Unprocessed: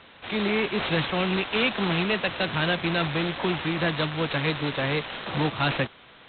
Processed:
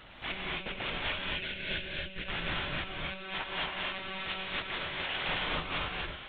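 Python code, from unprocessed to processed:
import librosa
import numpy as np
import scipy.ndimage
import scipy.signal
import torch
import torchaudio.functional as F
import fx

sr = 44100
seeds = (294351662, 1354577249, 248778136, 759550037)

y = fx.over_compress(x, sr, threshold_db=-32.0, ratio=-0.5)
y = np.clip(y, -10.0 ** (-25.5 / 20.0), 10.0 ** (-25.5 / 20.0))
y = fx.lpc_monotone(y, sr, seeds[0], pitch_hz=190.0, order=10)
y = fx.spec_box(y, sr, start_s=1.08, length_s=1.19, low_hz=660.0, high_hz=1400.0, gain_db=-13)
y = fx.low_shelf(y, sr, hz=170.0, db=-10.0, at=(2.98, 5.29))
y = fx.rev_gated(y, sr, seeds[1], gate_ms=300, shape='rising', drr_db=-3.0)
y = fx.dynamic_eq(y, sr, hz=2500.0, q=0.76, threshold_db=-44.0, ratio=4.0, max_db=5)
y = y * librosa.db_to_amplitude(-8.0)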